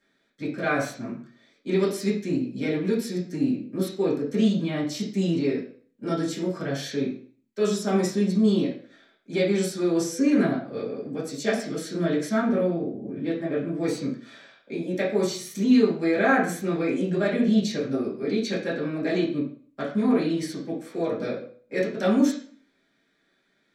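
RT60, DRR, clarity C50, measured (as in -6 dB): 0.45 s, -7.5 dB, 6.5 dB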